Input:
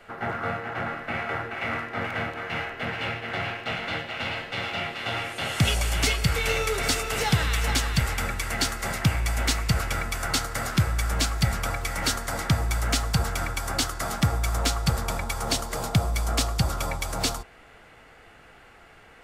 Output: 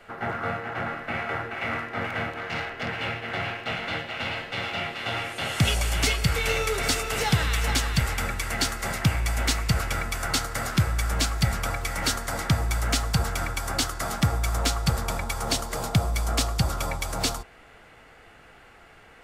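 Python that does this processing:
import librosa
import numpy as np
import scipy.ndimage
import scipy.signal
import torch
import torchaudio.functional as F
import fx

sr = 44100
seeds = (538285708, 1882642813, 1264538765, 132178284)

y = fx.self_delay(x, sr, depth_ms=0.069, at=(2.38, 2.89))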